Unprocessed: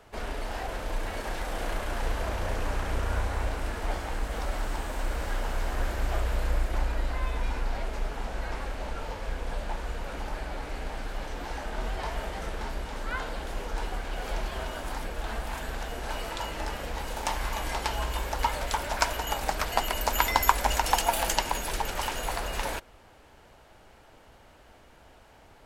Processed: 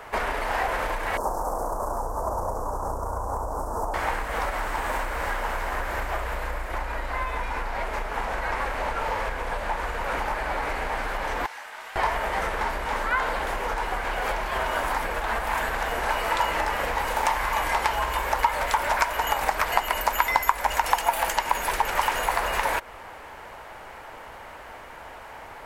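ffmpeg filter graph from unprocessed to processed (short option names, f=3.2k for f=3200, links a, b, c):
-filter_complex "[0:a]asettb=1/sr,asplit=3[a][b][c];[a]atrim=end=1.174[d];[b]atrim=start=1.17:end=3.94,asetpts=PTS-STARTPTS,afade=t=in:d=0.004:c=qsin,afade=t=out:st=2.766:d=0.004:c=qsin,asuperstop=centerf=2600:order=8:qfactor=0.56,acompressor=threshold=-30dB:ratio=2:attack=3.2:release=140:knee=1:detection=peak[e];[c]atrim=start=3.936[f];[d][e]acrossfade=d=0.004:c1=hsin:c2=qsin[g];[g][f]acrossfade=d=0.004:c1=qsin:c2=hsin,asettb=1/sr,asplit=3[h][i][j];[h]atrim=end=11.464[k];[i]atrim=start=11.46:end=11.96,asetpts=PTS-STARTPTS,afade=t=in:d=0.004:c=qsin,afade=t=out:st=0.496:d=0.004:c=qsin,lowpass=f=2.7k:p=1,aderivative[l];[j]atrim=start=11.956[m];[k][l]acrossfade=d=0.004:c1=hsin:c2=qsin[n];[n][m]acrossfade=d=0.004:c1=qsin:c2=hsin,highshelf=f=9.3k:g=10,acompressor=threshold=-34dB:ratio=6,equalizer=f=500:t=o:w=1:g=5,equalizer=f=1k:t=o:w=1:g=11,equalizer=f=2k:t=o:w=1:g=10,volume=4.5dB"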